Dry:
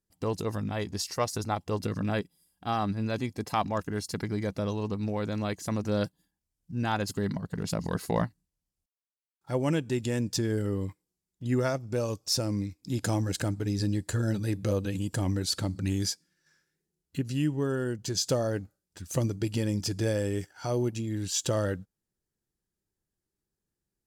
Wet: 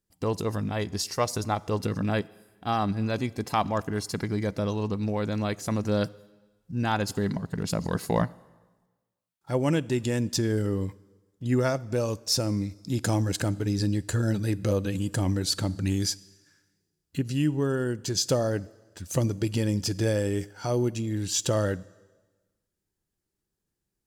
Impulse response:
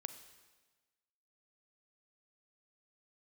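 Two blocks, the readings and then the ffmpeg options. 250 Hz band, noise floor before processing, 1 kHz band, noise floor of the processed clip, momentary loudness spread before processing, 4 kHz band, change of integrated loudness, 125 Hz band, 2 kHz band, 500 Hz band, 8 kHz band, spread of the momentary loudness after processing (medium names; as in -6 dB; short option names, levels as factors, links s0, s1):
+2.5 dB, under -85 dBFS, +2.5 dB, -83 dBFS, 6 LU, +2.5 dB, +2.5 dB, +2.5 dB, +2.5 dB, +2.5 dB, +2.5 dB, 6 LU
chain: -filter_complex "[0:a]asplit=2[s0][s1];[1:a]atrim=start_sample=2205[s2];[s1][s2]afir=irnorm=-1:irlink=0,volume=0.531[s3];[s0][s3]amix=inputs=2:normalize=0"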